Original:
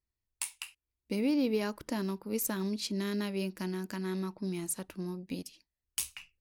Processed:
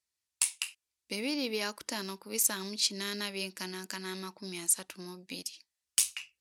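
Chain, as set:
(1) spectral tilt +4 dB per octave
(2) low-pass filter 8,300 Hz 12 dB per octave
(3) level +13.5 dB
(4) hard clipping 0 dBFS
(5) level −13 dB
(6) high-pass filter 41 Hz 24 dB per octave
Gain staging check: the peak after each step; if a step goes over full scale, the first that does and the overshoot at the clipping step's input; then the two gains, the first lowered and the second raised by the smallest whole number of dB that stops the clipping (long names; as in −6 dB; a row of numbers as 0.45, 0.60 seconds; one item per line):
−3.5, −7.5, +6.0, 0.0, −13.0, −13.0 dBFS
step 3, 6.0 dB
step 3 +7.5 dB, step 5 −7 dB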